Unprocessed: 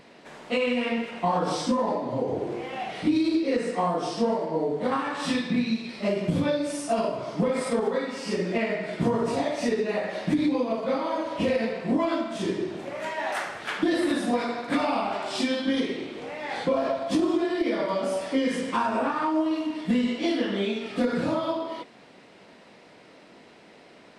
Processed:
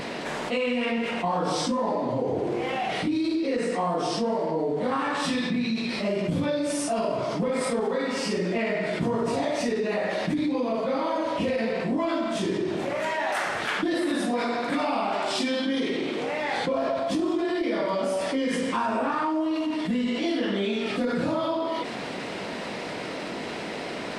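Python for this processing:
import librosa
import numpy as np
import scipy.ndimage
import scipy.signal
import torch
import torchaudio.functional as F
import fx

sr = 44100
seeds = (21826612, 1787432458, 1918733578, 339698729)

y = fx.highpass(x, sr, hz=130.0, slope=12, at=(13.94, 16.38))
y = fx.env_flatten(y, sr, amount_pct=70)
y = y * 10.0 ** (-5.0 / 20.0)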